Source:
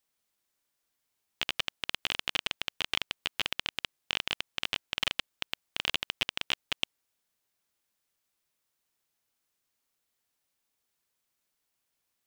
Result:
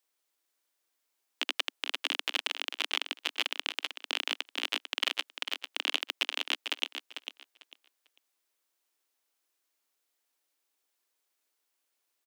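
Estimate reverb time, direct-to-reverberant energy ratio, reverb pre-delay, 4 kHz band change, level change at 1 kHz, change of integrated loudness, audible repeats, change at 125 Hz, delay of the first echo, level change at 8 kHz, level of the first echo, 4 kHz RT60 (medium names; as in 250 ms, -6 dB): no reverb, no reverb, no reverb, +0.5 dB, +0.5 dB, +0.5 dB, 2, under -30 dB, 447 ms, +0.5 dB, -8.5 dB, no reverb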